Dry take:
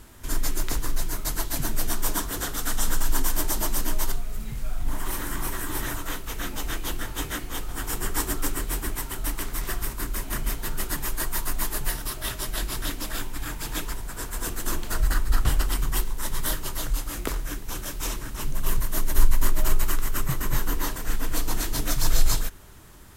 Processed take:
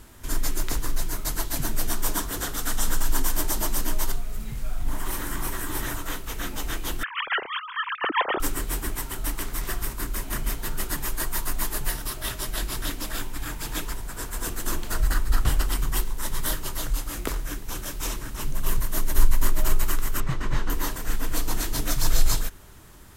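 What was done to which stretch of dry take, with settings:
7.03–8.40 s: formants replaced by sine waves
20.20–20.70 s: low-pass 4.4 kHz

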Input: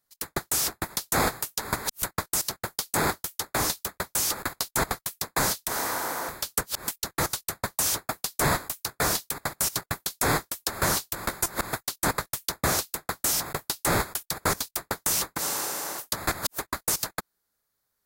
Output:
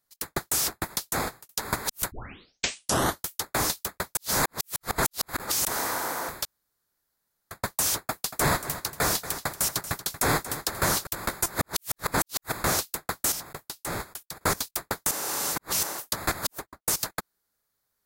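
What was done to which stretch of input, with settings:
0.97–1.49 s: fade out
2.12 s: tape start 1.09 s
4.17–5.65 s: reverse
6.45–7.51 s: room tone
8.02–11.07 s: feedback delay 233 ms, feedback 25%, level -13 dB
11.59–12.66 s: reverse
13.32–14.41 s: gain -8.5 dB
15.11–15.83 s: reverse
16.44–16.86 s: studio fade out

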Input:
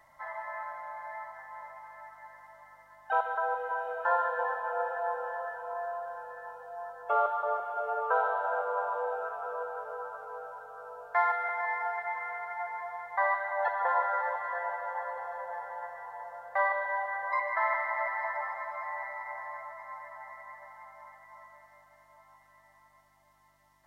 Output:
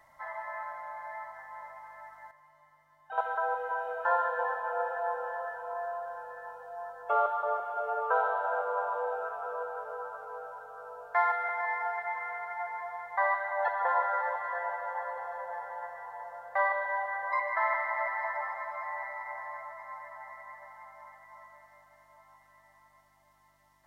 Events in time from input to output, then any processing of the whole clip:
2.31–3.18 s: feedback comb 150 Hz, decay 0.29 s, mix 80%

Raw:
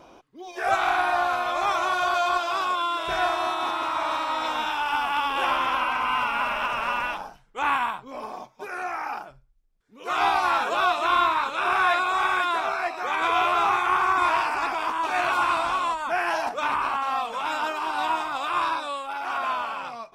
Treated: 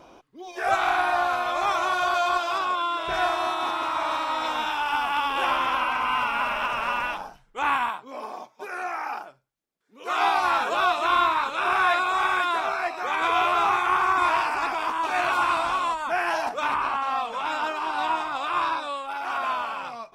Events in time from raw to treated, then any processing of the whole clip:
2.58–3.14 s: treble shelf 6.2 kHz -7.5 dB
7.89–10.37 s: high-pass 240 Hz
16.74–19.08 s: treble shelf 9.9 kHz -10 dB

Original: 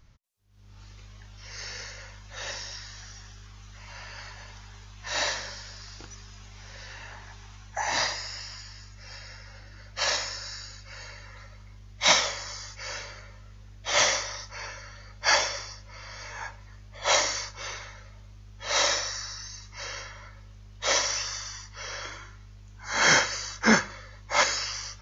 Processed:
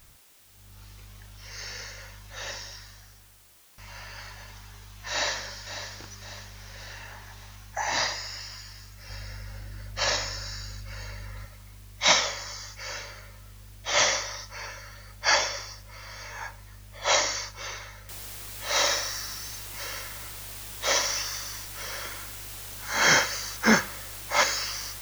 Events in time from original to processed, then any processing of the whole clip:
2.38–3.78 s: studio fade out
5.11–5.92 s: echo throw 550 ms, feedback 50%, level -10.5 dB
9.09–11.45 s: bass shelf 370 Hz +8.5 dB
18.09 s: noise floor step -57 dB -41 dB

